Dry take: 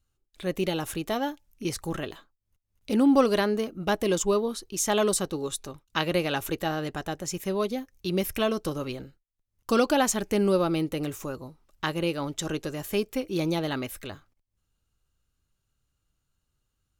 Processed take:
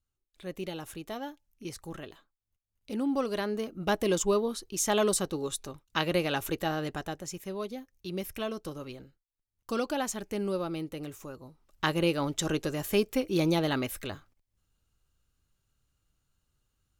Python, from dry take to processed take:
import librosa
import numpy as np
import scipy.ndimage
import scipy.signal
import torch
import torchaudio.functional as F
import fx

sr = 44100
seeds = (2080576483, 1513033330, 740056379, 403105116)

y = fx.gain(x, sr, db=fx.line((3.24, -9.5), (3.85, -2.0), (6.94, -2.0), (7.45, -8.5), (11.38, -8.5), (11.85, 1.0)))